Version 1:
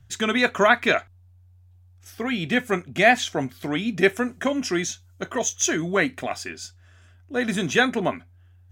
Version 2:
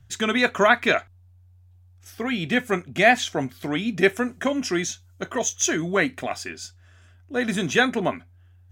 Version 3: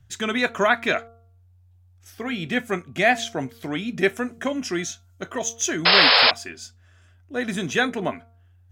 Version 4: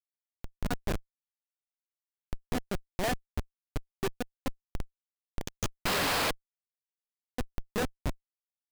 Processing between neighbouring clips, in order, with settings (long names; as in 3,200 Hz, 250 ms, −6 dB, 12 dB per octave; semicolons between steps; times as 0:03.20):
no processing that can be heard
hum removal 230 Hz, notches 6; sound drawn into the spectrogram noise, 0:05.85–0:06.31, 420–5,300 Hz −13 dBFS; level −2 dB
fade in at the beginning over 1.24 s; comparator with hysteresis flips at −17 dBFS; level −3.5 dB